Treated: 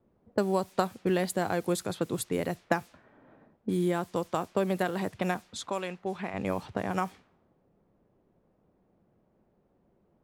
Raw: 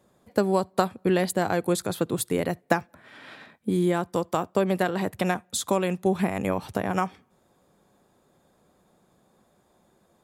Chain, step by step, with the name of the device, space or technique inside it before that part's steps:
0:05.69–0:06.34: low-shelf EQ 450 Hz −10.5 dB
cassette deck with a dynamic noise filter (white noise bed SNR 24 dB; low-pass that shuts in the quiet parts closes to 420 Hz, open at −22 dBFS)
level −4.5 dB

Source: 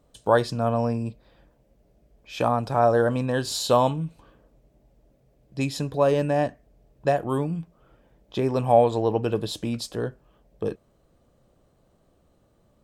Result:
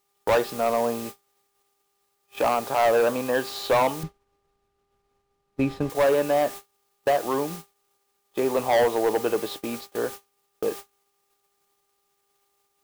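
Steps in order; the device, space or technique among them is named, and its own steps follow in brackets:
aircraft radio (band-pass filter 370–2,700 Hz; hard clipping −20 dBFS, distortion −8 dB; hum with harmonics 400 Hz, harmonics 3, −48 dBFS −1 dB per octave; white noise bed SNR 14 dB; noise gate −38 dBFS, range −34 dB)
0:04.03–0:05.90: RIAA equalisation playback
level +4 dB

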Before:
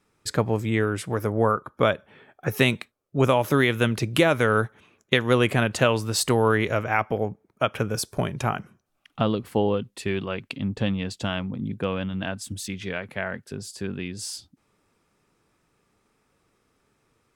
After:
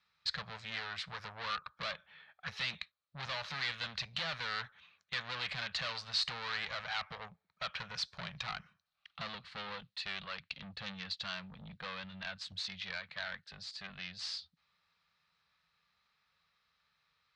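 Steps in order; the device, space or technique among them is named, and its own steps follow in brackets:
scooped metal amplifier (tube saturation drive 29 dB, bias 0.65; loudspeaker in its box 76–4,600 Hz, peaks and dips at 110 Hz −10 dB, 170 Hz +6 dB, 390 Hz −7 dB, 1,200 Hz +3 dB, 1,800 Hz +3 dB, 4,100 Hz +9 dB; guitar amp tone stack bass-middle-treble 10-0-10)
level +2 dB

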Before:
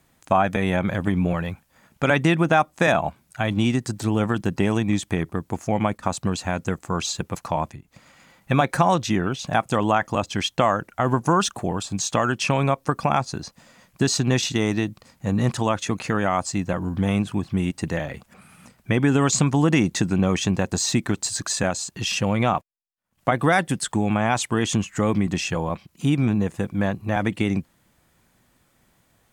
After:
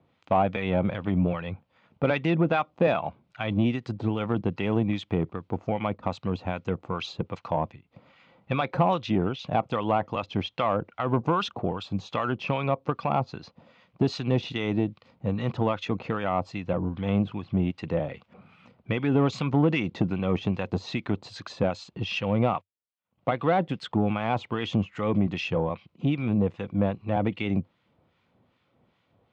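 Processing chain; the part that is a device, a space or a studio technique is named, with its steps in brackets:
guitar amplifier with harmonic tremolo (two-band tremolo in antiphase 2.5 Hz, depth 70%, crossover 1,100 Hz; soft clipping −14 dBFS, distortion −18 dB; loudspeaker in its box 91–3,600 Hz, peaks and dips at 94 Hz +4 dB, 490 Hz +5 dB, 1,700 Hz −9 dB)

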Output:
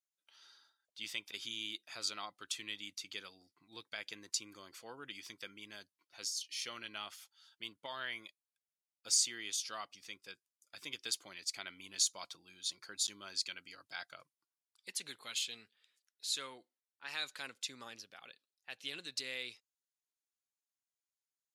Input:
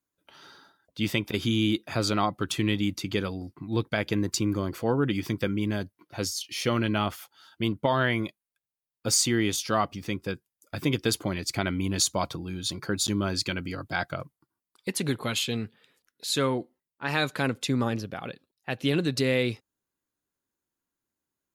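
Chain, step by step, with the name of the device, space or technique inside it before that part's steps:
piezo pickup straight into a mixer (low-pass filter 6,600 Hz 12 dB per octave; first difference)
level −2 dB

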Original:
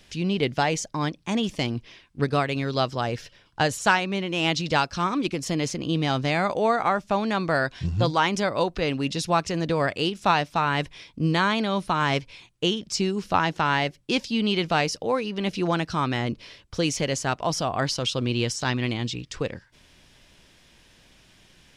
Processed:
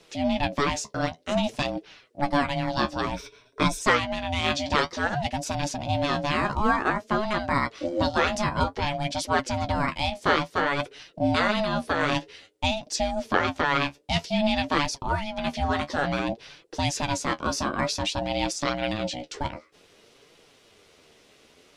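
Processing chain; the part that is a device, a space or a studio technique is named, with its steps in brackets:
alien voice (ring modulation 430 Hz; flanger 0.54 Hz, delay 5.7 ms, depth 9.1 ms, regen +39%)
0:03.11–0:03.82: EQ curve with evenly spaced ripples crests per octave 1.6, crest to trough 10 dB
level +5.5 dB

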